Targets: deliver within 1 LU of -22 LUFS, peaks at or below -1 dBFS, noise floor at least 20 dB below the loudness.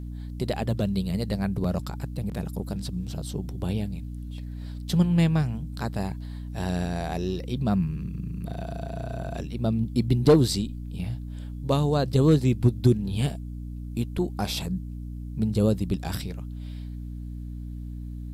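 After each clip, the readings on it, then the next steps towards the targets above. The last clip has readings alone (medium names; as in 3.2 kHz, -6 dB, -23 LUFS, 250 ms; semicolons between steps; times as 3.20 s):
hum 60 Hz; highest harmonic 300 Hz; hum level -32 dBFS; loudness -27.0 LUFS; peak level -9.0 dBFS; loudness target -22.0 LUFS
-> hum notches 60/120/180/240/300 Hz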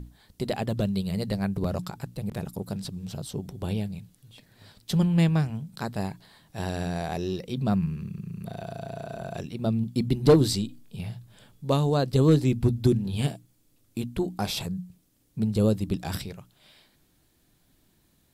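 hum not found; loudness -27.5 LUFS; peak level -8.5 dBFS; loudness target -22.0 LUFS
-> trim +5.5 dB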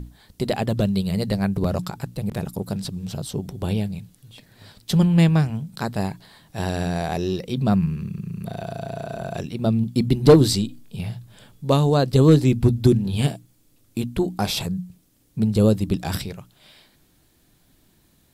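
loudness -22.0 LUFS; peak level -3.0 dBFS; noise floor -61 dBFS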